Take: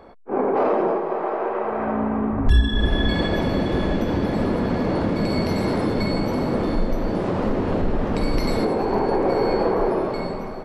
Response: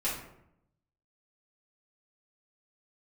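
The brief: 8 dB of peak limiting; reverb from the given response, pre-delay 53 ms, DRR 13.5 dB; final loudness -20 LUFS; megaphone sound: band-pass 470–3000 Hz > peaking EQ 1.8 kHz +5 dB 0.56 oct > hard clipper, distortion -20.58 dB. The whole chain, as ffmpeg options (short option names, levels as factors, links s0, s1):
-filter_complex "[0:a]alimiter=limit=0.178:level=0:latency=1,asplit=2[s0][s1];[1:a]atrim=start_sample=2205,adelay=53[s2];[s1][s2]afir=irnorm=-1:irlink=0,volume=0.1[s3];[s0][s3]amix=inputs=2:normalize=0,highpass=470,lowpass=3000,equalizer=f=1800:t=o:w=0.56:g=5,asoftclip=type=hard:threshold=0.0891,volume=2.66"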